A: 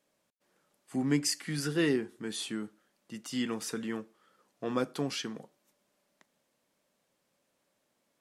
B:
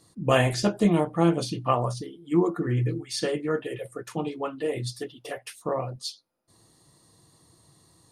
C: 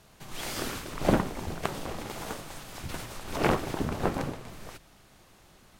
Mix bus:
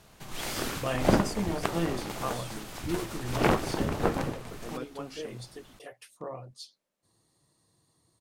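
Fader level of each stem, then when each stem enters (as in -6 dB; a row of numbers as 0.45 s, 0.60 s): -9.0 dB, -11.0 dB, +1.0 dB; 0.00 s, 0.55 s, 0.00 s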